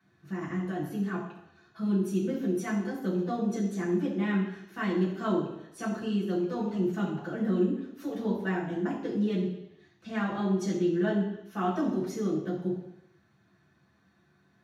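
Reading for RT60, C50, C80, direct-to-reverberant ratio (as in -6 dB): 0.80 s, 5.0 dB, 7.5 dB, -7.5 dB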